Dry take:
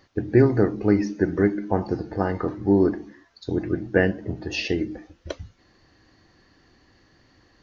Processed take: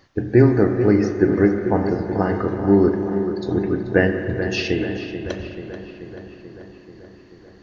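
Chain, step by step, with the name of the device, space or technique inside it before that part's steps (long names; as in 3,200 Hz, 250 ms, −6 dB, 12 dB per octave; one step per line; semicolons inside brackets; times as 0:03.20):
dub delay into a spring reverb (feedback echo with a low-pass in the loop 435 ms, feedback 69%, low-pass 3,100 Hz, level −10 dB; spring reverb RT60 2.9 s, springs 33/40 ms, chirp 60 ms, DRR 6.5 dB)
level +2.5 dB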